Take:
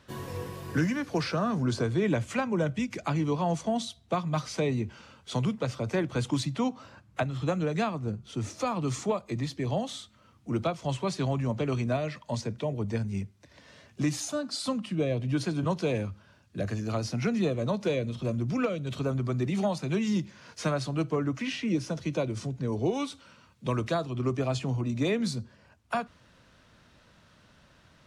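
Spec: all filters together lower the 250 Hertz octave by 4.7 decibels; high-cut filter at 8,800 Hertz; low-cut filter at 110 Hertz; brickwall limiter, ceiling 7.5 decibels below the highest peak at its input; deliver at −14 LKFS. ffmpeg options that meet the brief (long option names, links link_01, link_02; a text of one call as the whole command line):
ffmpeg -i in.wav -af "highpass=110,lowpass=8800,equalizer=frequency=250:width_type=o:gain=-6,volume=21dB,alimiter=limit=-3.5dB:level=0:latency=1" out.wav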